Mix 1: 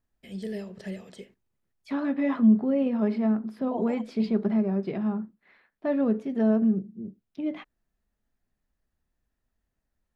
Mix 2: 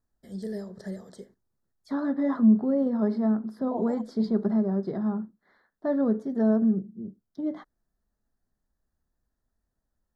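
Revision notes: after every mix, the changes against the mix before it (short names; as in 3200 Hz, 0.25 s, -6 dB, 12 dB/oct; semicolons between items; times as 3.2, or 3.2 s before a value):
master: add Butterworth band-stop 2600 Hz, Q 1.2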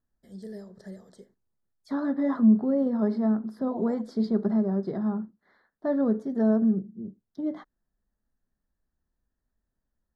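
first voice -6.0 dB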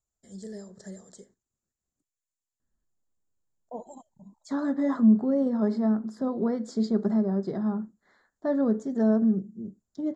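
second voice: entry +2.60 s; master: add synth low-pass 7200 Hz, resonance Q 10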